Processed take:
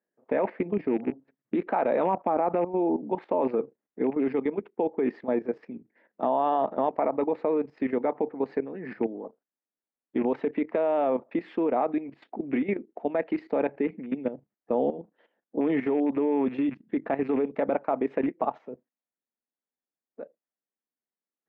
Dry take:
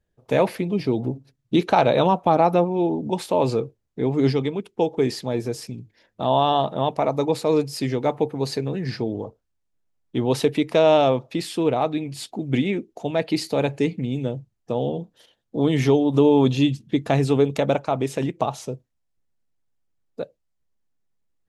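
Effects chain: rattle on loud lows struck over -24 dBFS, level -27 dBFS; peak limiter -12.5 dBFS, peak gain reduction 8 dB; Chebyshev band-pass 230–2000 Hz, order 3; level held to a coarse grid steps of 13 dB; trim +2 dB

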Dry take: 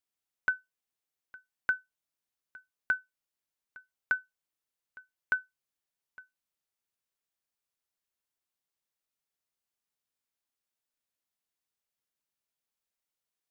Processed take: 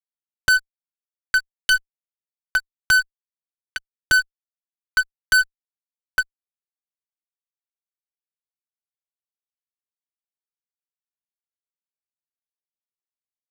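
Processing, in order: tracing distortion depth 0.14 ms; comb 3.8 ms, depth 47%; compressor with a negative ratio -27 dBFS, ratio -0.5; LFO high-pass saw up 0.51 Hz 270–3400 Hz; fuzz box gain 44 dB, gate -52 dBFS

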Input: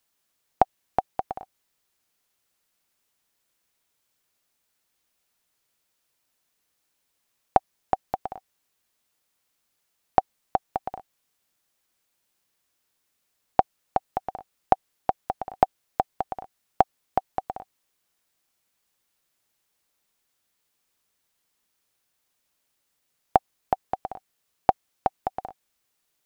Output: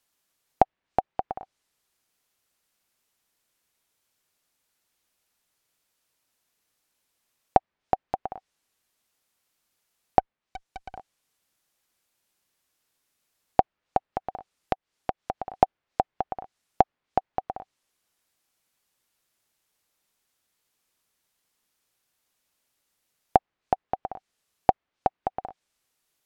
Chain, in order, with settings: 10.19–10.96 s: valve stage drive 32 dB, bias 0.7; 14.03–15.46 s: compression 3:1, threshold -25 dBFS, peak gain reduction 10 dB; low-pass that closes with the level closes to 2.3 kHz, closed at -29 dBFS

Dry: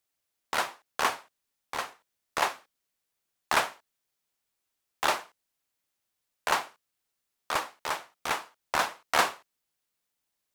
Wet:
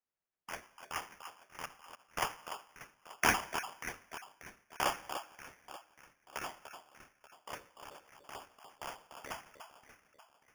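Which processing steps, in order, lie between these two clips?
random holes in the spectrogram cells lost 26%; Doppler pass-by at 3.62 s, 29 m/s, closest 15 m; echo whose repeats swap between lows and highs 294 ms, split 1.6 kHz, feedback 60%, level -7.5 dB; on a send at -20 dB: reverberation RT60 1.3 s, pre-delay 52 ms; on the sum: sample-and-hold 11×; trim +2 dB

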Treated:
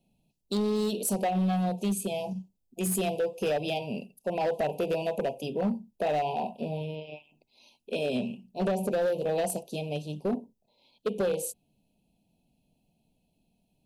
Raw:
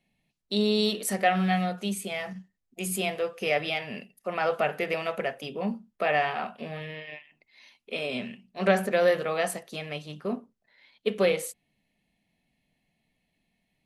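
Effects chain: Chebyshev band-stop 960–2500 Hz, order 4; peaking EQ 2.7 kHz -9 dB 2.9 oct; compression 8:1, threshold -28 dBFS, peak gain reduction 9.5 dB; overload inside the chain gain 29 dB; trim +6 dB

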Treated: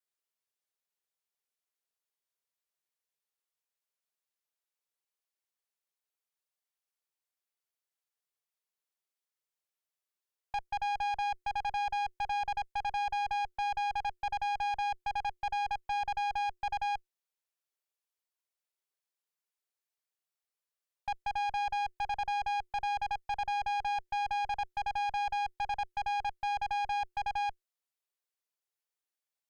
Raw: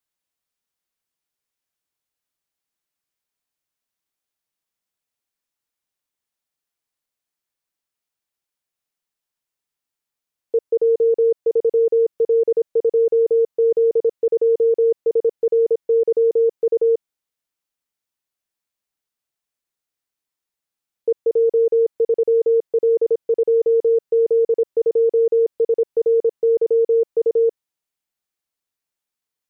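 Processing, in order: dynamic bell 640 Hz, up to -5 dB, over -29 dBFS, Q 1.1; frequency shift +360 Hz; valve stage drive 26 dB, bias 0.6; trim -4.5 dB

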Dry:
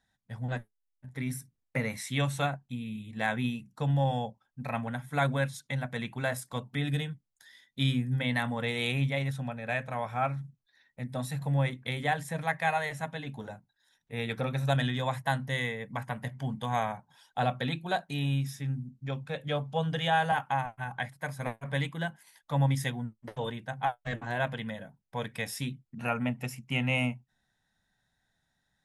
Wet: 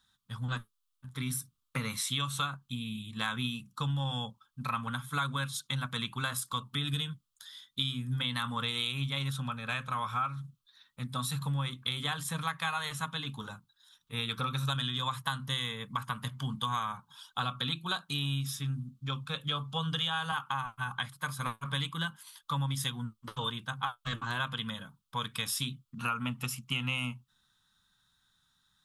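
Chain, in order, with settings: FFT filter 180 Hz 0 dB, 450 Hz -6 dB, 690 Hz -13 dB, 1.2 kHz +15 dB, 1.9 kHz -6 dB, 3.3 kHz +12 dB, 5.6 kHz +6 dB, 9.5 kHz +8 dB; compression, threshold -29 dBFS, peak gain reduction 11 dB

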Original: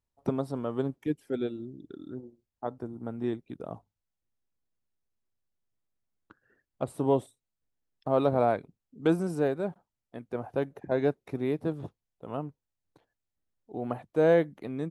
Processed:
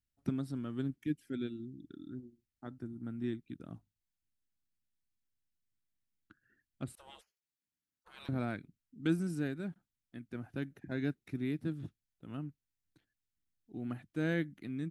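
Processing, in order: high-order bell 680 Hz -16 dB; 6.95–8.29 s: spectral gate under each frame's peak -25 dB weak; trim -3 dB

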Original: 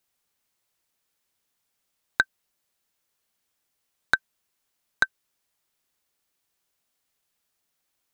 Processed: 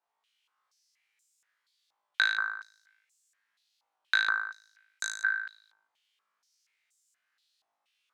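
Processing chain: flutter echo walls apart 3.2 m, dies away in 0.84 s; step-sequenced band-pass 4.2 Hz 900–7300 Hz; trim +8 dB

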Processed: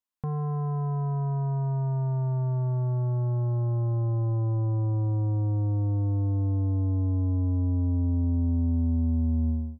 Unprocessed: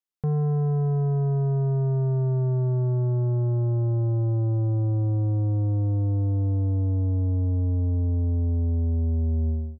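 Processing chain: graphic EQ with 31 bands 160 Hz -6 dB, 250 Hz +8 dB, 400 Hz -10 dB, 1 kHz +10 dB; trim -2 dB

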